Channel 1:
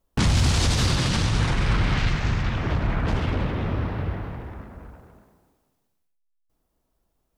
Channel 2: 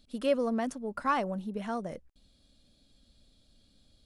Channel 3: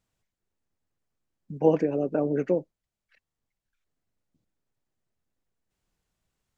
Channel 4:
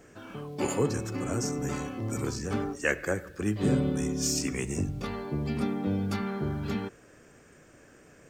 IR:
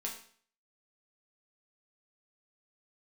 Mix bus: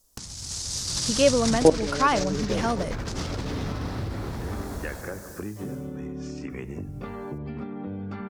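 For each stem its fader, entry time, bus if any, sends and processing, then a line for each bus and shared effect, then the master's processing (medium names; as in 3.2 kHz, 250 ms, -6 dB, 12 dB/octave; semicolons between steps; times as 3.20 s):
1.78 s -3.5 dB -> 2.08 s -11.5 dB -> 4.14 s -11.5 dB -> 4.71 s -1.5 dB -> 5.73 s -1.5 dB -> 5.98 s -13.5 dB, 0.00 s, bus A, no send, resonant high shelf 4 kHz +11.5 dB, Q 1.5; compressor with a negative ratio -25 dBFS, ratio -0.5
-0.5 dB, 0.95 s, no bus, no send, none
+0.5 dB, 0.00 s, no bus, no send, level held to a coarse grid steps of 19 dB
-1.0 dB, 2.00 s, bus A, no send, low-pass 1.6 kHz 12 dB/octave; compression 5:1, threshold -36 dBFS, peak gain reduction 14 dB
bus A: 0.0 dB, compression 1.5:1, threshold -45 dBFS, peak gain reduction 6.5 dB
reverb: none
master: peaking EQ 7.3 kHz +6.5 dB 2.9 oct; level rider gain up to 8 dB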